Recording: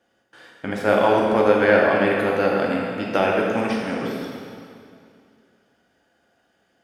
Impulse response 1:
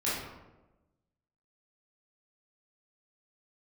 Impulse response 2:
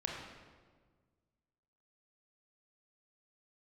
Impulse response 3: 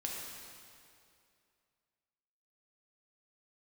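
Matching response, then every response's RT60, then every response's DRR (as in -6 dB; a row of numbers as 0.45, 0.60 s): 3; 1.1, 1.6, 2.5 s; -10.0, -1.5, -2.5 dB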